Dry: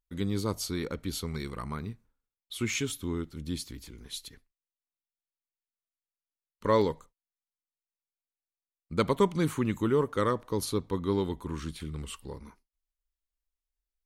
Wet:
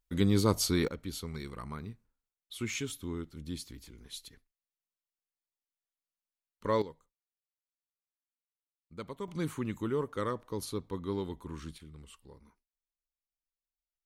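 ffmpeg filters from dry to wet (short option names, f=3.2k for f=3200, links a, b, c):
-af "asetnsamples=n=441:p=0,asendcmd='0.88 volume volume -5dB;6.82 volume volume -16dB;9.28 volume volume -6.5dB;11.78 volume volume -13dB',volume=4.5dB"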